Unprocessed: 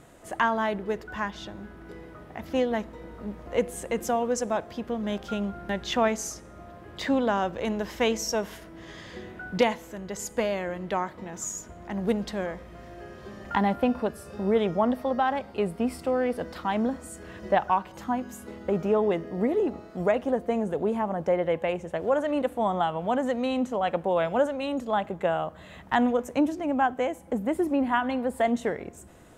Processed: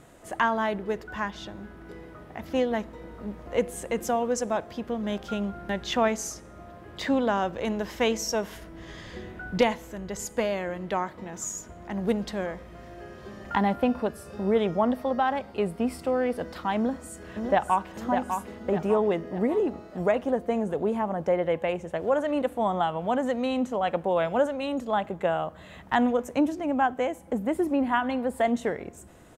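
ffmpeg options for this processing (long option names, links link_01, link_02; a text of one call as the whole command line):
ffmpeg -i in.wav -filter_complex "[0:a]asettb=1/sr,asplit=3[link_01][link_02][link_03];[link_01]atrim=end=8.554[link_04];[link_02]atrim=start=8.55:end=10.25,asetpts=PTS-STARTPTS,afade=type=in:duration=0.004:curve=qsin,afade=type=out:start_time=1.696:duration=0.004:curve=qsin,lowshelf=frequency=65:gain=12[link_05];[link_03]atrim=start=10.246[link_06];[link_04][link_05]acrossfade=duration=0.004:curve1=hsin:curve2=qsin[link_07];[link_07][link_06]acrossfade=duration=0.004:curve1=qsin:curve2=hsin,asplit=2[link_08][link_09];[link_09]afade=type=in:start_time=16.76:duration=0.01,afade=type=out:start_time=17.94:duration=0.01,aecho=0:1:600|1200|1800|2400|3000:0.501187|0.225534|0.10149|0.0456707|0.0205518[link_10];[link_08][link_10]amix=inputs=2:normalize=0" out.wav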